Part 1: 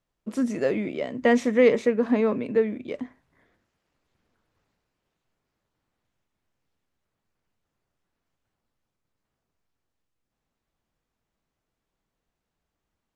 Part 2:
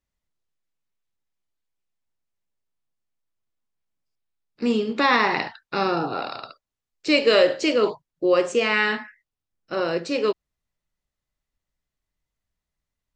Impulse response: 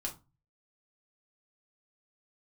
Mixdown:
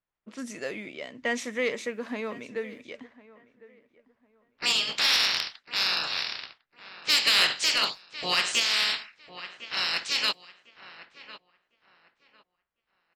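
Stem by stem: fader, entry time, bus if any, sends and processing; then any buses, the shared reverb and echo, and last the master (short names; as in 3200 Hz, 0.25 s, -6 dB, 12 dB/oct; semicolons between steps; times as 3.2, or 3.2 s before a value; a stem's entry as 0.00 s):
-5.0 dB, 0.00 s, no send, echo send -20 dB, dry
-7.5 dB, 0.00 s, no send, echo send -15 dB, spectral limiter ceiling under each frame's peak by 29 dB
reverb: off
echo: feedback echo 1.053 s, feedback 25%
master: low-pass opened by the level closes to 1500 Hz, open at -27.5 dBFS; tilt shelf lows -9 dB, about 1200 Hz; soft clip -14 dBFS, distortion -16 dB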